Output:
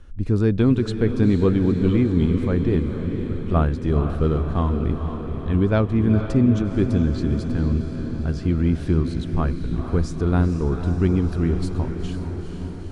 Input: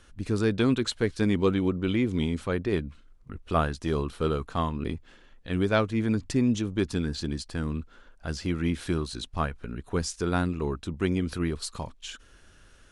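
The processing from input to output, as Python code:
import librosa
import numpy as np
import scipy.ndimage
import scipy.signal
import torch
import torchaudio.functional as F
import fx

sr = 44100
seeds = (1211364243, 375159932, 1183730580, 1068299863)

y = fx.tilt_eq(x, sr, slope=-3.0)
y = fx.echo_diffused(y, sr, ms=472, feedback_pct=69, wet_db=-8)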